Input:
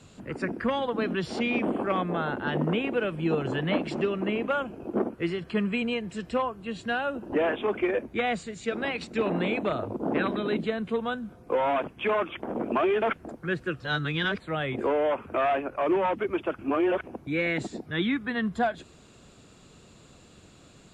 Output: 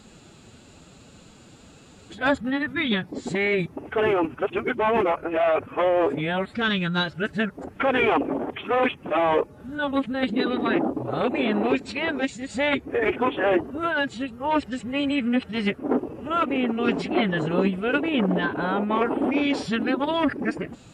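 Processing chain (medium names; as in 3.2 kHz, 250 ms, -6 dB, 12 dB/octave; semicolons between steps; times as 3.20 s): reverse the whole clip; formant-preserving pitch shift +3 st; trim +4.5 dB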